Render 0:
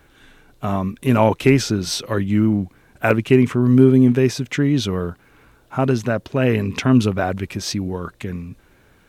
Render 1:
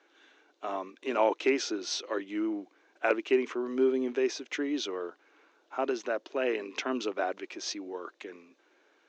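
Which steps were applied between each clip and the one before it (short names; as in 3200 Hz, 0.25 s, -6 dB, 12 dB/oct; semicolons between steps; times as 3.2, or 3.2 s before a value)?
Chebyshev band-pass 310–6500 Hz, order 4; gain -8.5 dB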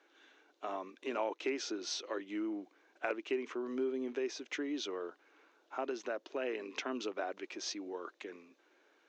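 compressor 2:1, threshold -34 dBFS, peak gain reduction 8.5 dB; gain -3 dB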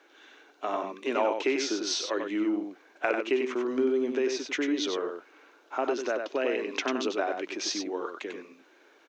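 echo 95 ms -5.5 dB; gain +8.5 dB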